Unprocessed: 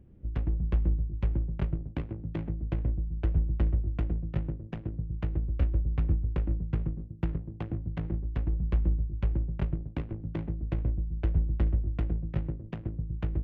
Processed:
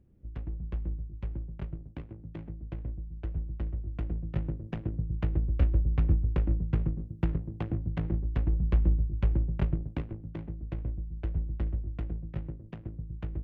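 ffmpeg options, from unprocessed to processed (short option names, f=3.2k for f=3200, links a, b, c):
-af "volume=2dB,afade=t=in:st=3.75:d=1.02:silence=0.334965,afade=t=out:st=9.81:d=0.44:silence=0.446684"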